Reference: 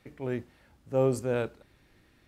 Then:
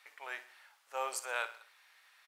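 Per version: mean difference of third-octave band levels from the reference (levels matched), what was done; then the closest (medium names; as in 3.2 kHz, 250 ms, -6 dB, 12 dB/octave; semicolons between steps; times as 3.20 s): 15.5 dB: high-pass 900 Hz 24 dB/octave; feedback delay 61 ms, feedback 47%, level -14 dB; trim +4 dB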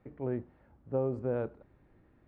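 5.0 dB: low-pass 1.1 kHz 12 dB/octave; compression, threshold -27 dBFS, peak gain reduction 7 dB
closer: second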